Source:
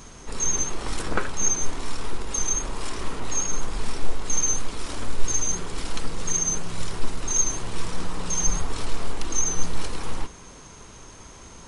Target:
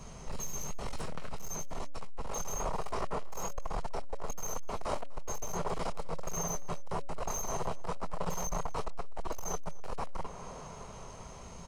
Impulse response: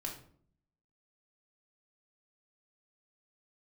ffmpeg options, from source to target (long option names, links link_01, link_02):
-filter_complex "[0:a]asplit=2[link_01][link_02];[link_02]acompressor=threshold=-26dB:ratio=8,volume=1.5dB[link_03];[link_01][link_03]amix=inputs=2:normalize=0,volume=21.5dB,asoftclip=hard,volume=-21.5dB,bandreject=frequency=280.1:width_type=h:width=4,bandreject=frequency=560.2:width_type=h:width=4,acrossover=split=410|1300[link_04][link_05][link_06];[link_05]dynaudnorm=framelen=920:gausssize=5:maxgain=12.5dB[link_07];[link_06]flanger=delay=20:depth=4.8:speed=1.1[link_08];[link_04][link_07][link_08]amix=inputs=3:normalize=0,equalizer=frequency=160:width_type=o:width=0.33:gain=7,equalizer=frequency=315:width_type=o:width=0.33:gain=-11,equalizer=frequency=630:width_type=o:width=0.33:gain=4,equalizer=frequency=1600:width_type=o:width=0.33:gain=-6,aeval=exprs='sgn(val(0))*max(abs(val(0))-0.00106,0)':channel_layout=same,highshelf=frequency=8600:gain=-6,bandreject=frequency=3500:width=13,aecho=1:1:249:0.075,volume=-8.5dB"